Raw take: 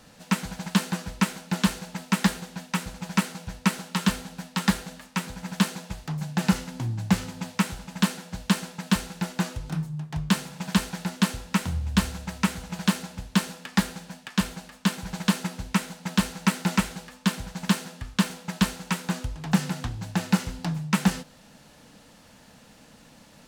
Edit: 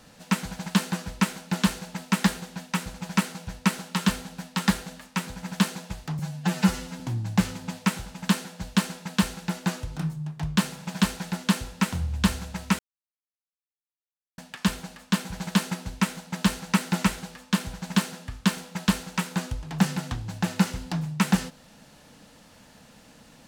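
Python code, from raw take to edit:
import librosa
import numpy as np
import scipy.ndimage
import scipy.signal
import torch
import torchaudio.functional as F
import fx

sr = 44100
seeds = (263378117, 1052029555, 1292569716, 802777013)

y = fx.edit(x, sr, fx.stretch_span(start_s=6.19, length_s=0.54, factor=1.5),
    fx.silence(start_s=12.52, length_s=1.59), tone=tone)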